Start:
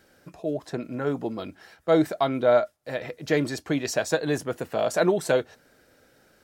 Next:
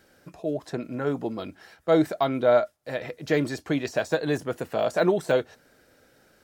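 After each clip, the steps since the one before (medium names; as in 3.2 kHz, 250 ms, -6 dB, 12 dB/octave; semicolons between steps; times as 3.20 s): de-esser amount 85%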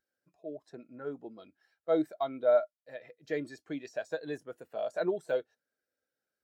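tilt EQ +2 dB/octave; spectral contrast expander 1.5:1; trim -6 dB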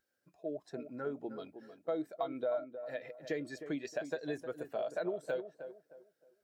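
compression 5:1, threshold -38 dBFS, peak gain reduction 16 dB; tape echo 311 ms, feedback 35%, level -8.5 dB, low-pass 1.2 kHz; trim +4 dB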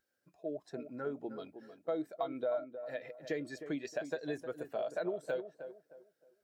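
no audible change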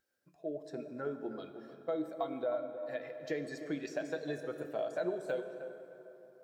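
plate-style reverb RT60 3.4 s, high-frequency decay 0.6×, DRR 8 dB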